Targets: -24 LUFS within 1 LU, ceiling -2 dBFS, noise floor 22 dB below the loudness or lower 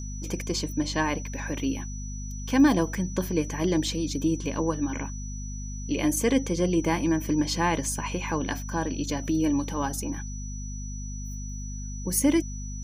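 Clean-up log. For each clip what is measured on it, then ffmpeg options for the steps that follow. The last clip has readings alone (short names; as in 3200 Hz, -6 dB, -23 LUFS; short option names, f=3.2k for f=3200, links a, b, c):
hum 50 Hz; harmonics up to 250 Hz; hum level -32 dBFS; steady tone 5900 Hz; tone level -42 dBFS; loudness -28.0 LUFS; peak -9.5 dBFS; loudness target -24.0 LUFS
-> -af "bandreject=f=50:t=h:w=6,bandreject=f=100:t=h:w=6,bandreject=f=150:t=h:w=6,bandreject=f=200:t=h:w=6,bandreject=f=250:t=h:w=6"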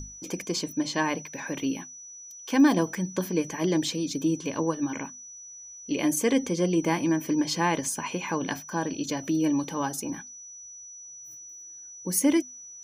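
hum none; steady tone 5900 Hz; tone level -42 dBFS
-> -af "bandreject=f=5.9k:w=30"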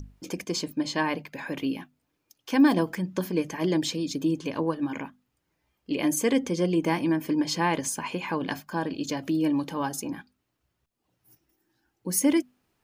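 steady tone none; loudness -27.5 LUFS; peak -10.5 dBFS; loudness target -24.0 LUFS
-> -af "volume=3.5dB"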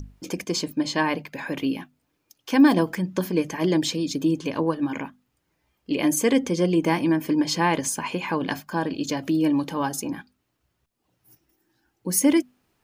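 loudness -24.0 LUFS; peak -7.0 dBFS; noise floor -75 dBFS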